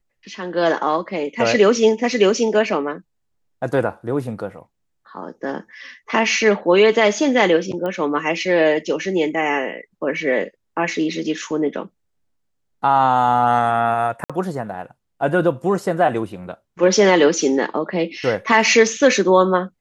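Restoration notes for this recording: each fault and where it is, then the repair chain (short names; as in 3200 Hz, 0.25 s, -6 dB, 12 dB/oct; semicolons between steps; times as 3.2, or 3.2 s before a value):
7.86 pop -16 dBFS
14.24–14.3 gap 56 ms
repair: de-click; interpolate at 14.24, 56 ms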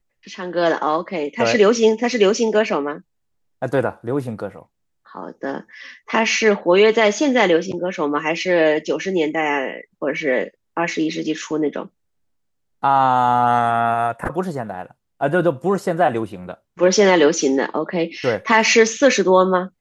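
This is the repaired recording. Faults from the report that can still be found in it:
none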